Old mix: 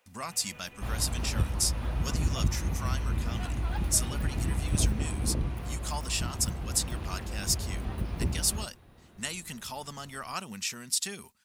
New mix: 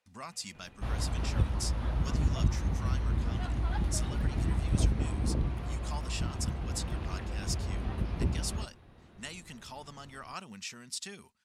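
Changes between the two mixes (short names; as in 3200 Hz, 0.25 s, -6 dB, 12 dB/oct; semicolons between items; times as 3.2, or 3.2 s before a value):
speech -5.5 dB; first sound -11.5 dB; master: add air absorption 52 m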